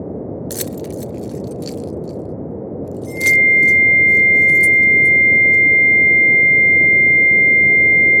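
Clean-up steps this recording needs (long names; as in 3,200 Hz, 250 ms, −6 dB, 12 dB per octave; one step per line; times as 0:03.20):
hum removal 108.4 Hz, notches 20
notch filter 2,100 Hz, Q 30
noise reduction from a noise print 30 dB
echo removal 417 ms −16 dB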